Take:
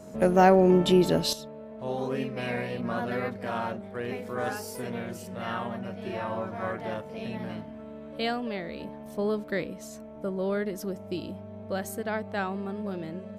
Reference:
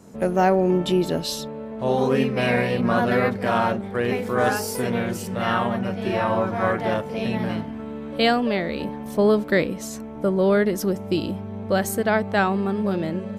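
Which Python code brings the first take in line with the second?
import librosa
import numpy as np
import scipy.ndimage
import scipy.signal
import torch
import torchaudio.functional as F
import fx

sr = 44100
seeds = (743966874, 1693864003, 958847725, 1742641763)

y = fx.notch(x, sr, hz=630.0, q=30.0)
y = fx.gain(y, sr, db=fx.steps((0.0, 0.0), (1.33, 10.5)))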